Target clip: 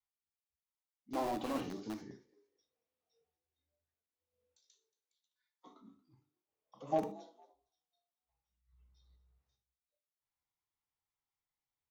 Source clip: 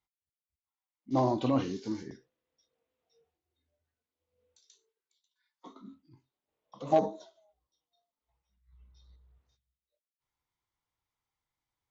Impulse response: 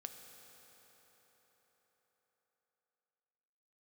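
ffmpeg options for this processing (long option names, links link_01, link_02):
-filter_complex "[0:a]asettb=1/sr,asplit=3[link_01][link_02][link_03];[link_01]atrim=end=5.804[link_04];[link_02]atrim=start=5.8:end=7.07,asetpts=PTS-STARTPTS,afade=type=in:duration=0.004:curve=qsin,afade=type=out:start_time=1.266:duration=0.004:curve=qsin,bandreject=frequency=4000:width=6.6[link_05];[link_03]atrim=start=7.066[link_06];[link_04][link_05]acrossfade=duration=0.004:curve1=hsin:curve2=qsin[link_07];[link_07][link_06]acrossfade=duration=0.004:curve1=qsin:curve2=hsin,adynamicequalizer=threshold=0.0141:dfrequency=240:dqfactor=1.2:tfrequency=240:tqfactor=1.2:attack=5:release=100:ratio=0.375:range=2:mode=boostabove:tftype=bell,bandreject=frequency=50:width_type=h:width=6,bandreject=frequency=100:width_type=h:width=6,bandreject=frequency=150:width_type=h:width=6,bandreject=frequency=200:width_type=h:width=6,bandreject=frequency=250:width_type=h:width=6,bandreject=frequency=300:width_type=h:width=6,bandreject=frequency=350:width_type=h:width=6,bandreject=frequency=400:width_type=h:width=6,acrossover=split=230[link_08][link_09];[link_08]aeval=exprs='(mod(44.7*val(0)+1,2)-1)/44.7':channel_layout=same[link_10];[link_09]asplit=3[link_11][link_12][link_13];[link_12]adelay=229,afreqshift=42,volume=-21.5dB[link_14];[link_13]adelay=458,afreqshift=84,volume=-32dB[link_15];[link_11][link_14][link_15]amix=inputs=3:normalize=0[link_16];[link_10][link_16]amix=inputs=2:normalize=0[link_17];[1:a]atrim=start_sample=2205,afade=type=out:start_time=0.18:duration=0.01,atrim=end_sample=8379,asetrate=70560,aresample=44100[link_18];[link_17][link_18]afir=irnorm=-1:irlink=0,volume=1dB"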